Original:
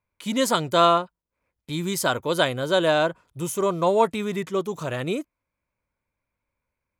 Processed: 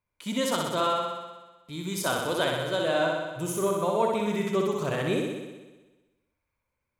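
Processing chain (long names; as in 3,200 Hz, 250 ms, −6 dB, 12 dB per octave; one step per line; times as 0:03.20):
speech leveller within 4 dB 0.5 s
flutter between parallel walls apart 10.7 metres, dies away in 1.2 s
level −6.5 dB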